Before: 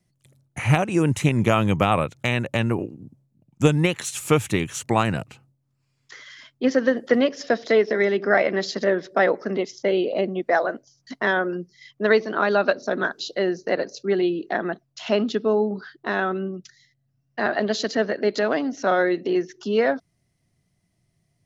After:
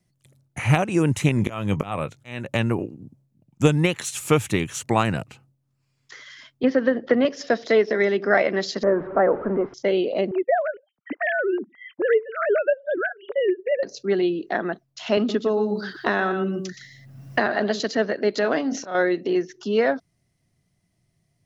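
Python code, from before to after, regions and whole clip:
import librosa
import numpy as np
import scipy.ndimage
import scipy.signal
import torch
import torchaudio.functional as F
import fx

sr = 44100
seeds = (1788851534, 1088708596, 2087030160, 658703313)

y = fx.chain(x, sr, fx.auto_swell(attack_ms=328.0),
    fx.doubler(ms=20.0, db=-13.0), at=(1.35, 2.48))
y = fx.chain(y, sr, fx.air_absorb(metres=240.0),
    fx.band_squash(depth_pct=70), at=(6.63, 7.25))
y = fx.chain(y, sr, fx.zero_step(step_db=-28.0),
    fx.lowpass(hz=1400.0, slope=24), at=(8.83, 9.74))
y = fx.chain(y, sr, fx.sine_speech(),
    fx.high_shelf(hz=3000.0, db=-12.0),
    fx.band_squash(depth_pct=70), at=(10.31, 13.83))
y = fx.chain(y, sr, fx.high_shelf(hz=11000.0, db=5.5),
    fx.echo_single(ms=119, db=-10.0),
    fx.band_squash(depth_pct=100), at=(15.17, 17.8))
y = fx.chain(y, sr, fx.auto_swell(attack_ms=277.0),
    fx.doubler(ms=26.0, db=-10.5),
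    fx.sustainer(db_per_s=110.0), at=(18.42, 18.95))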